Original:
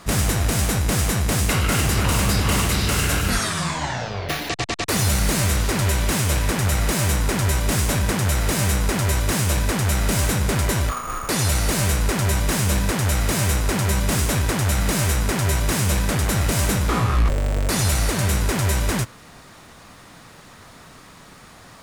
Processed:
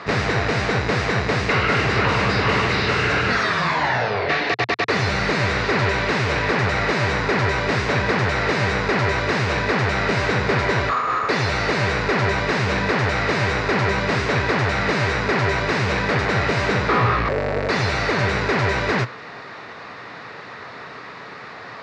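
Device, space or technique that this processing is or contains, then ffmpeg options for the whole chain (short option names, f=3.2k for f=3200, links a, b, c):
overdrive pedal into a guitar cabinet: -filter_complex "[0:a]asplit=2[a][b];[b]highpass=f=720:p=1,volume=17dB,asoftclip=type=tanh:threshold=-11dB[c];[a][c]amix=inputs=2:normalize=0,lowpass=f=4.8k:p=1,volume=-6dB,highpass=79,equalizer=f=120:t=q:w=4:g=6,equalizer=f=430:t=q:w=4:g=7,equalizer=f=1.9k:t=q:w=4:g=3,equalizer=f=3.2k:t=q:w=4:g=-8,lowpass=f=4.3k:w=0.5412,lowpass=f=4.3k:w=1.3066"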